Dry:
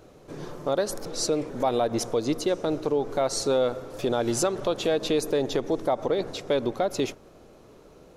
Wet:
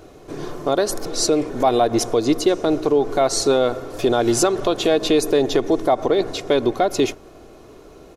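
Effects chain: comb 2.8 ms, depth 36%; trim +7 dB

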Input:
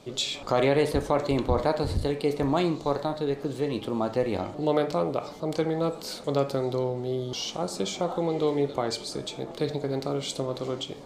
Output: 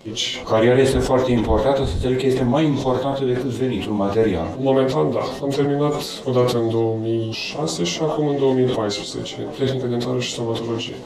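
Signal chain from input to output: frequency-domain pitch shifter -2 st; decay stretcher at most 58 dB/s; trim +8.5 dB

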